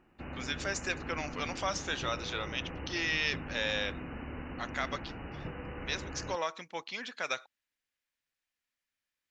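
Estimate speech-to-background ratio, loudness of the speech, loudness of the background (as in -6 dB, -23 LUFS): 7.5 dB, -35.5 LUFS, -43.0 LUFS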